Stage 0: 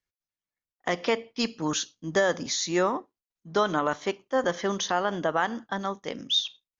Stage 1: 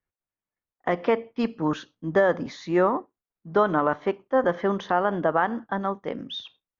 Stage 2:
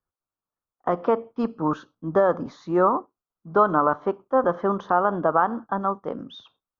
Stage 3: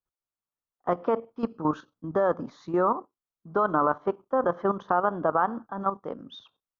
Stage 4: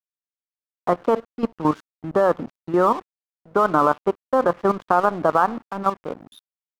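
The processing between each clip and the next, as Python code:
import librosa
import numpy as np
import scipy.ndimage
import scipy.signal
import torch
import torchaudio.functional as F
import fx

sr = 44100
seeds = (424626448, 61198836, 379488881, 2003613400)

y1 = scipy.signal.sosfilt(scipy.signal.butter(2, 1600.0, 'lowpass', fs=sr, output='sos'), x)
y1 = y1 * librosa.db_to_amplitude(4.0)
y2 = fx.high_shelf_res(y1, sr, hz=1600.0, db=-7.5, q=3.0)
y3 = fx.level_steps(y2, sr, step_db=11)
y4 = np.sign(y3) * np.maximum(np.abs(y3) - 10.0 ** (-44.0 / 20.0), 0.0)
y4 = y4 * librosa.db_to_amplitude(6.5)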